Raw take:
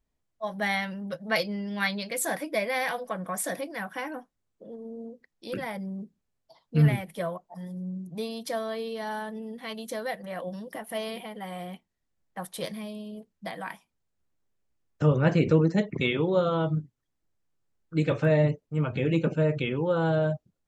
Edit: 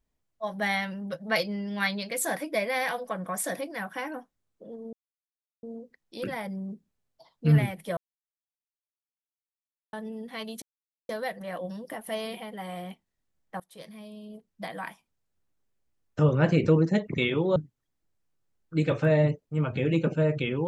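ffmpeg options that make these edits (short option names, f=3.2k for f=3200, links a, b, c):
-filter_complex "[0:a]asplit=7[a][b][c][d][e][f][g];[a]atrim=end=4.93,asetpts=PTS-STARTPTS,afade=t=out:st=4.926:d=0.004:c=hsin,apad=pad_dur=0.7[h];[b]atrim=start=4.93:end=7.27,asetpts=PTS-STARTPTS,afade=t=in:d=0.004:c=hsin,afade=t=out:st=2.336:d=0.004:c=hsin[i];[c]atrim=start=7.27:end=9.23,asetpts=PTS-STARTPTS,volume=0[j];[d]atrim=start=9.23:end=9.92,asetpts=PTS-STARTPTS,afade=t=in:d=0.004:c=hsin,afade=t=out:st=0.686:d=0.004:c=hsin,apad=pad_dur=0.47[k];[e]atrim=start=9.92:end=12.43,asetpts=PTS-STARTPTS,afade=t=in:d=0.004:c=hsin,afade=t=out:st=2.506:d=0.004:c=hsin:silence=0.0891251[l];[f]atrim=start=12.43:end=16.392,asetpts=PTS-STARTPTS,afade=t=in:d=1.11:silence=0.0891251[m];[g]atrim=start=16.758[n];[h][i][j][k][l][m]concat=n=6:v=0:a=1[o];[o][n]acrossfade=d=0.004:c1=hsin:c2=hsin"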